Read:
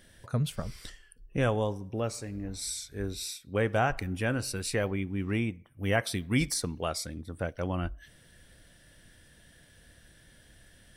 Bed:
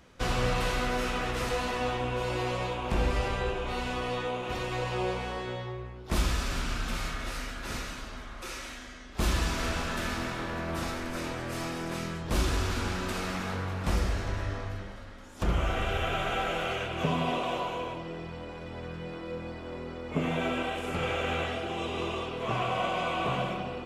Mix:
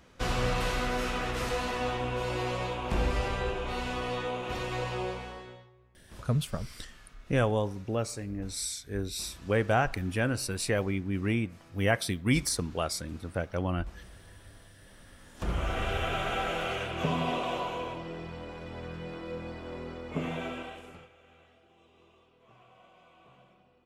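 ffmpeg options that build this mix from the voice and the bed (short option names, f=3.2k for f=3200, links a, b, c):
-filter_complex "[0:a]adelay=5950,volume=1dB[a];[1:a]volume=20.5dB,afade=t=out:st=4.81:d=0.89:silence=0.0841395,afade=t=in:st=14.77:d=1.09:silence=0.0841395,afade=t=out:st=19.88:d=1.21:silence=0.0398107[b];[a][b]amix=inputs=2:normalize=0"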